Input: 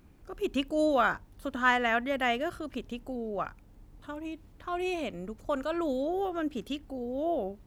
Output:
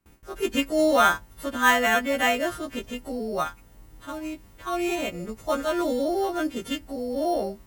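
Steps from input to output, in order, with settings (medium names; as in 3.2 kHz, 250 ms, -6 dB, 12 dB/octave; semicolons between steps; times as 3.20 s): partials quantised in pitch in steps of 2 st; gate with hold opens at -48 dBFS; in parallel at -5 dB: sample-and-hold 9×; on the sum: trim +2 dB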